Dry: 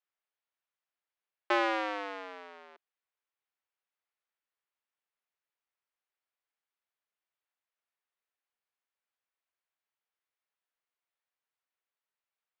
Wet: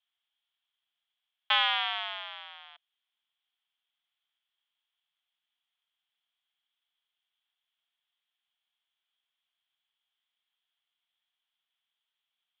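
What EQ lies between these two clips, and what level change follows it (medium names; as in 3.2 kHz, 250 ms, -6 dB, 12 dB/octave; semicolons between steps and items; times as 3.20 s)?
elliptic high-pass 690 Hz, stop band 40 dB; resonant low-pass 3.3 kHz, resonance Q 12; 0.0 dB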